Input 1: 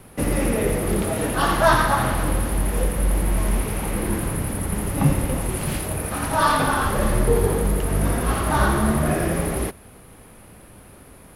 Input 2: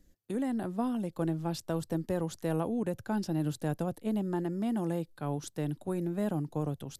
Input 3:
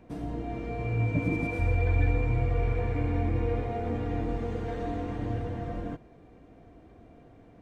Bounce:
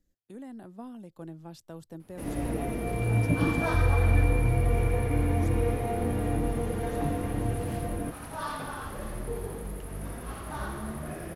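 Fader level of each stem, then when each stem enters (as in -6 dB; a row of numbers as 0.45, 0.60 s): -16.5, -11.0, +2.0 dB; 2.00, 0.00, 2.15 s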